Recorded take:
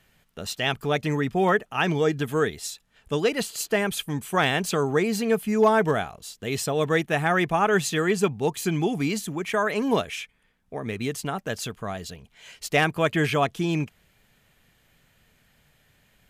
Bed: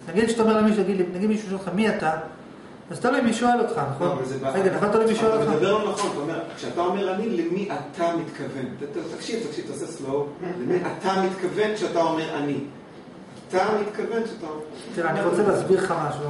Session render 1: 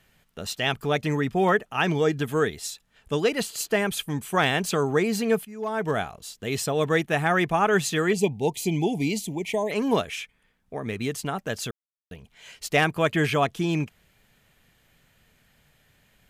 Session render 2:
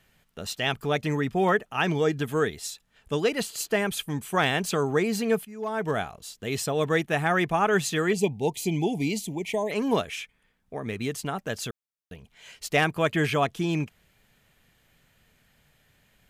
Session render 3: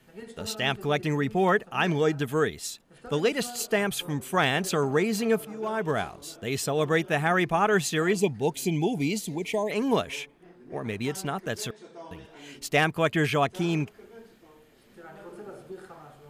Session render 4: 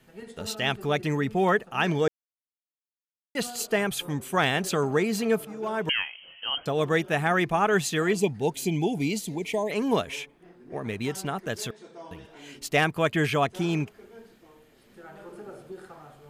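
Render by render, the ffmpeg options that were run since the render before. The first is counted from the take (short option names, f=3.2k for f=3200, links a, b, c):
-filter_complex "[0:a]asettb=1/sr,asplit=3[a][b][c];[a]atrim=end=8.134[d];[b]atrim=start=8.13:end=9.71,asetpts=PTS-STARTPTS,afade=t=in:d=0.004:c=qsin,afade=t=out:st=1.576:d=0.004:c=qsin,asuperstop=centerf=1400:order=8:qfactor=1.3[e];[c]atrim=start=9.706[f];[d][e]acrossfade=d=0.004:c1=hsin:c2=qsin[g];[g][f]acrossfade=d=0.004:c1=qsin:c2=hsin,asplit=4[h][i][j][k];[h]atrim=end=5.45,asetpts=PTS-STARTPTS,afade=t=out:st=5.446:d=0.004:c=hsin:silence=0.133352[l];[i]atrim=start=5.45:end=11.71,asetpts=PTS-STARTPTS,afade=t=in:d=0.55:c=qua:silence=0.133352,afade=t=out:st=6.256:d=0.004:c=hsin[m];[j]atrim=start=11.71:end=12.11,asetpts=PTS-STARTPTS,volume=0[n];[k]atrim=start=12.11,asetpts=PTS-STARTPTS,afade=t=in:d=0.004:c=hsin[o];[l][m][n][o]concat=n=4:v=0:a=1"
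-af "volume=-1.5dB"
-filter_complex "[1:a]volume=-22.5dB[a];[0:a][a]amix=inputs=2:normalize=0"
-filter_complex "[0:a]asettb=1/sr,asplit=3[a][b][c];[a]atrim=end=5.894[d];[b]atrim=start=5.89:end=6.66,asetpts=PTS-STARTPTS,afade=t=in:d=0.004:c=qsin,afade=t=out:st=0.766:d=0.004:c=qsin,lowpass=f=2.8k:t=q:w=0.5098,lowpass=f=2.8k:t=q:w=0.6013,lowpass=f=2.8k:t=q:w=0.9,lowpass=f=2.8k:t=q:w=2.563,afreqshift=-3300[e];[c]atrim=start=6.656[f];[d][e]acrossfade=d=0.004:c1=hsin:c2=qsin[g];[g][f]acrossfade=d=0.004:c1=qsin:c2=hsin,asplit=3[h][i][j];[h]atrim=end=2.08,asetpts=PTS-STARTPTS,afade=t=out:st=2.076:d=0.004:c=hsin[k];[i]atrim=start=2.08:end=3.35,asetpts=PTS-STARTPTS,volume=0[l];[j]atrim=start=3.35,asetpts=PTS-STARTPTS,afade=t=in:d=0.004:c=hsin[m];[k][l][m]concat=n=3:v=0:a=1"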